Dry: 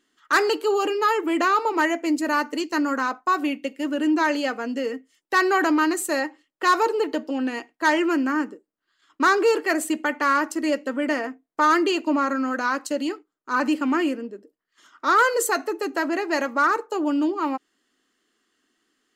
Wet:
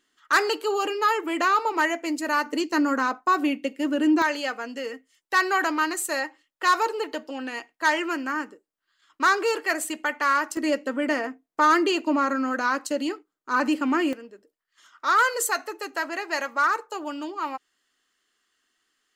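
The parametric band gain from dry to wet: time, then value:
parametric band 260 Hz 2.1 octaves
−6 dB
from 0:02.46 +1 dB
from 0:04.22 −9.5 dB
from 0:10.57 −1.5 dB
from 0:14.13 −13 dB

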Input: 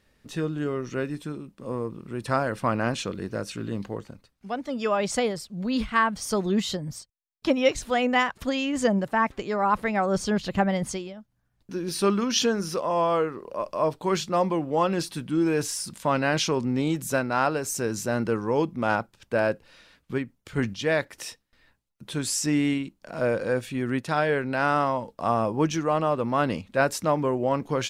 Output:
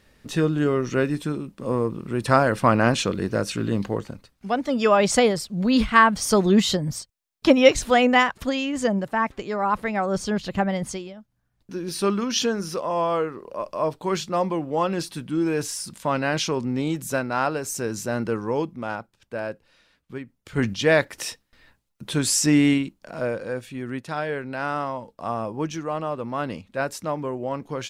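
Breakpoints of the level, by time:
0:07.89 +7 dB
0:08.76 0 dB
0:18.51 0 dB
0:18.94 −6.5 dB
0:20.18 −6.5 dB
0:20.74 +6 dB
0:22.76 +6 dB
0:23.42 −4 dB

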